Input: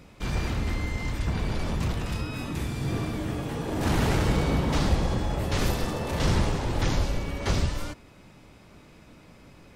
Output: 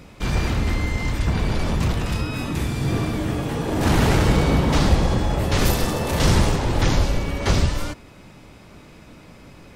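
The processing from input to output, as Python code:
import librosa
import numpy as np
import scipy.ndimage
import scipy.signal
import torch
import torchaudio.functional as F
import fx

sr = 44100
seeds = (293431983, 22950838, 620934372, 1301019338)

y = fx.high_shelf(x, sr, hz=7400.0, db=7.5, at=(5.65, 6.56))
y = F.gain(torch.from_numpy(y), 6.5).numpy()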